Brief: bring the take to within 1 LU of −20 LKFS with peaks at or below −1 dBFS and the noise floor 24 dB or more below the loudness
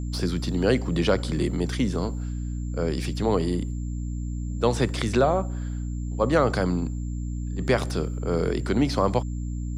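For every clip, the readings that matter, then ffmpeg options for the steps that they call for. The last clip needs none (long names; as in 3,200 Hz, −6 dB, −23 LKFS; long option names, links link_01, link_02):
mains hum 60 Hz; hum harmonics up to 300 Hz; level of the hum −27 dBFS; interfering tone 7,300 Hz; level of the tone −53 dBFS; integrated loudness −26.0 LKFS; sample peak −9.0 dBFS; target loudness −20.0 LKFS
→ -af "bandreject=frequency=60:width_type=h:width=4,bandreject=frequency=120:width_type=h:width=4,bandreject=frequency=180:width_type=h:width=4,bandreject=frequency=240:width_type=h:width=4,bandreject=frequency=300:width_type=h:width=4"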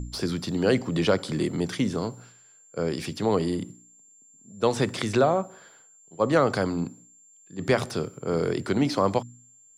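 mains hum none found; interfering tone 7,300 Hz; level of the tone −53 dBFS
→ -af "bandreject=frequency=7300:width=30"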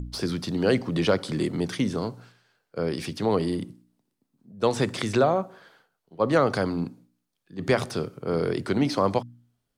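interfering tone none found; integrated loudness −26.0 LKFS; sample peak −9.5 dBFS; target loudness −20.0 LKFS
→ -af "volume=6dB"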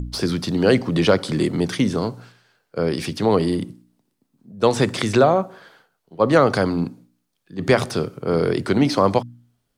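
integrated loudness −20.0 LKFS; sample peak −3.5 dBFS; background noise floor −73 dBFS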